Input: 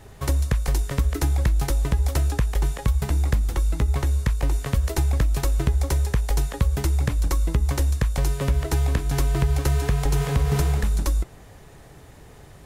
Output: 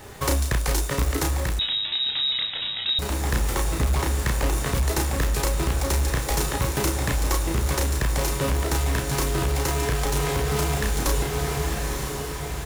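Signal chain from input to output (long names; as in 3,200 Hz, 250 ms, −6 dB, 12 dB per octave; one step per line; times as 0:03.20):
in parallel at −6 dB: log-companded quantiser 4 bits
on the sum: low-shelf EQ 190 Hz −10 dB
notch filter 680 Hz, Q 17
double-tracking delay 33 ms −4 dB
on a send: feedback delay with all-pass diffusion 967 ms, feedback 54%, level −8 dB
on the sum: hard clipping −19 dBFS, distortion −14 dB
0:01.59–0:02.99: voice inversion scrambler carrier 3,800 Hz
coupled-rooms reverb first 0.7 s, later 1.9 s, from −25 dB, DRR 18.5 dB
speech leveller within 4 dB 0.5 s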